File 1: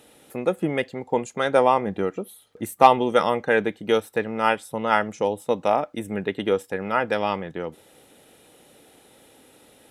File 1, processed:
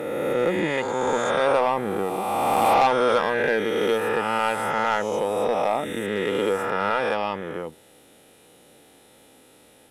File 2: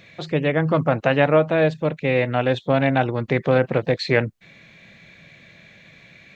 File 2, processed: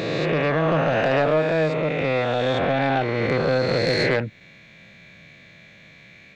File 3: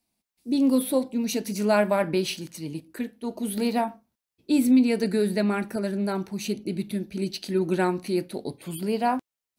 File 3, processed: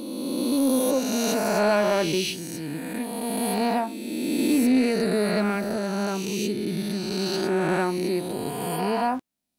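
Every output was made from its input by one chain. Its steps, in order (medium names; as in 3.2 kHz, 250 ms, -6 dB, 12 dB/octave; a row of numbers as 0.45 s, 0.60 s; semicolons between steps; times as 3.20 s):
reverse spectral sustain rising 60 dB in 2.38 s; saturation -8.5 dBFS; peak normalisation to -12 dBFS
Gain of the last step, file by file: -3.5 dB, -3.5 dB, -2.0 dB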